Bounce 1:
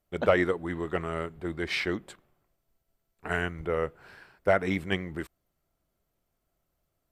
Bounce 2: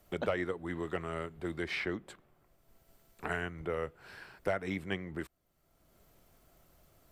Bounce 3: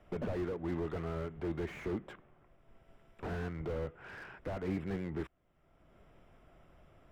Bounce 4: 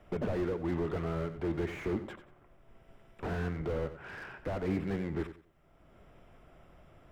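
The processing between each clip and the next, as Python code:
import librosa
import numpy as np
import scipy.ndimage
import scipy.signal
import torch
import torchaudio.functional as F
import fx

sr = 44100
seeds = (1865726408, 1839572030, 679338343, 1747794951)

y1 = fx.band_squash(x, sr, depth_pct=70)
y1 = y1 * librosa.db_to_amplitude(-6.5)
y2 = scipy.signal.savgol_filter(y1, 25, 4, mode='constant')
y2 = fx.slew_limit(y2, sr, full_power_hz=5.3)
y2 = y2 * librosa.db_to_amplitude(4.0)
y3 = fx.echo_feedback(y2, sr, ms=91, feedback_pct=24, wet_db=-12.0)
y3 = y3 * librosa.db_to_amplitude(3.5)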